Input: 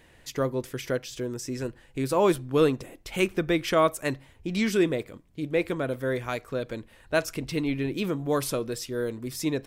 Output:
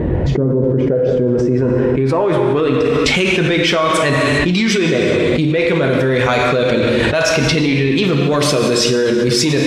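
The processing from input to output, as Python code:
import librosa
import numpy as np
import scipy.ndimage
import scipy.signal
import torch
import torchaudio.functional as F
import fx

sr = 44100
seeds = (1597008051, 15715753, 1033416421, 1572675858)

p1 = fx.spec_quant(x, sr, step_db=15)
p2 = scipy.signal.sosfilt(scipy.signal.butter(2, 42.0, 'highpass', fs=sr, output='sos'), p1)
p3 = fx.high_shelf(p2, sr, hz=2800.0, db=8.0)
p4 = np.clip(p3, -10.0 ** (-25.0 / 20.0), 10.0 ** (-25.0 / 20.0))
p5 = p3 + (p4 * librosa.db_to_amplitude(-7.0))
p6 = fx.filter_sweep_lowpass(p5, sr, from_hz=420.0, to_hz=4300.0, start_s=0.66, end_s=3.16, q=0.83)
p7 = p6 + fx.echo_single(p6, sr, ms=182, db=-18.5, dry=0)
p8 = fx.rev_gated(p7, sr, seeds[0], gate_ms=440, shape='falling', drr_db=3.0)
y = fx.env_flatten(p8, sr, amount_pct=100)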